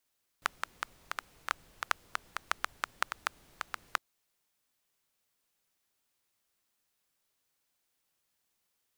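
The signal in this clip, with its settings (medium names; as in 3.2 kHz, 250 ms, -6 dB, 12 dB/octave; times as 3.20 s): rain from filtered ticks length 3.56 s, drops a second 5.6, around 1.3 kHz, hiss -21.5 dB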